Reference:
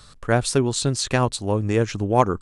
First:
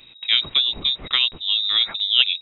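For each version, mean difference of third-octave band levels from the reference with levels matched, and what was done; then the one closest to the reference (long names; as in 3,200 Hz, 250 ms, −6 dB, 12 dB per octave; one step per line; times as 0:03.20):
18.5 dB: voice inversion scrambler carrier 3,800 Hz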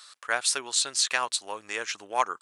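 10.5 dB: high-pass filter 1,300 Hz 12 dB per octave
level +1.5 dB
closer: second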